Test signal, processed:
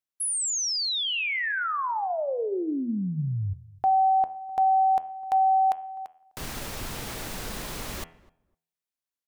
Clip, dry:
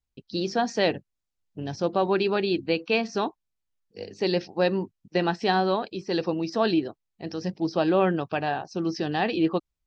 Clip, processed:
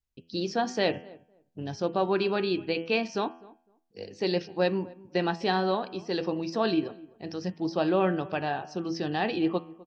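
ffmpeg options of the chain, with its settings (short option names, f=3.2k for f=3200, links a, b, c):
-filter_complex "[0:a]bandreject=f=83.06:t=h:w=4,bandreject=f=166.12:t=h:w=4,bandreject=f=249.18:t=h:w=4,bandreject=f=332.24:t=h:w=4,bandreject=f=415.3:t=h:w=4,bandreject=f=498.36:t=h:w=4,bandreject=f=581.42:t=h:w=4,bandreject=f=664.48:t=h:w=4,bandreject=f=747.54:t=h:w=4,bandreject=f=830.6:t=h:w=4,bandreject=f=913.66:t=h:w=4,bandreject=f=996.72:t=h:w=4,bandreject=f=1.07978k:t=h:w=4,bandreject=f=1.16284k:t=h:w=4,bandreject=f=1.2459k:t=h:w=4,bandreject=f=1.32896k:t=h:w=4,bandreject=f=1.41202k:t=h:w=4,bandreject=f=1.49508k:t=h:w=4,bandreject=f=1.57814k:t=h:w=4,bandreject=f=1.6612k:t=h:w=4,bandreject=f=1.74426k:t=h:w=4,bandreject=f=1.82732k:t=h:w=4,bandreject=f=1.91038k:t=h:w=4,bandreject=f=1.99344k:t=h:w=4,bandreject=f=2.0765k:t=h:w=4,bandreject=f=2.15956k:t=h:w=4,bandreject=f=2.24262k:t=h:w=4,bandreject=f=2.32568k:t=h:w=4,bandreject=f=2.40874k:t=h:w=4,bandreject=f=2.4918k:t=h:w=4,bandreject=f=2.57486k:t=h:w=4,bandreject=f=2.65792k:t=h:w=4,bandreject=f=2.74098k:t=h:w=4,bandreject=f=2.82404k:t=h:w=4,bandreject=f=2.9071k:t=h:w=4,bandreject=f=2.99016k:t=h:w=4,bandreject=f=3.07322k:t=h:w=4,bandreject=f=3.15628k:t=h:w=4,bandreject=f=3.23934k:t=h:w=4,bandreject=f=3.3224k:t=h:w=4,asplit=2[a][b];[b]adelay=254,lowpass=f=1.1k:p=1,volume=-21dB,asplit=2[c][d];[d]adelay=254,lowpass=f=1.1k:p=1,volume=0.18[e];[c][e]amix=inputs=2:normalize=0[f];[a][f]amix=inputs=2:normalize=0,volume=-2.5dB"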